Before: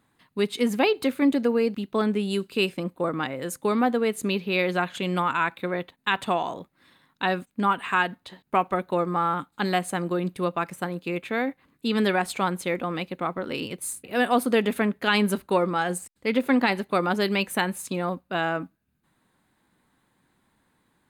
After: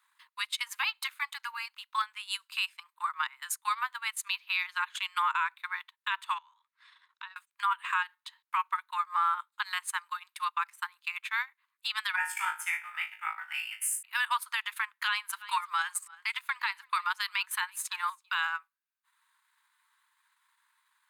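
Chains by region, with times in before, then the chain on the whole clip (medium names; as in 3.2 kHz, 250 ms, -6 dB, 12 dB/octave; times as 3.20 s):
6.38–7.36 s: band-pass 550–6100 Hz + compression 2.5:1, threshold -49 dBFS
12.16–14.03 s: static phaser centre 1.1 kHz, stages 6 + flutter echo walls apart 3.2 m, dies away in 0.49 s
14.99–18.47 s: delay 331 ms -21.5 dB + three bands compressed up and down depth 40%
whole clip: steep high-pass 920 Hz 96 dB/octave; transient shaper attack +3 dB, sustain -11 dB; peak limiter -19.5 dBFS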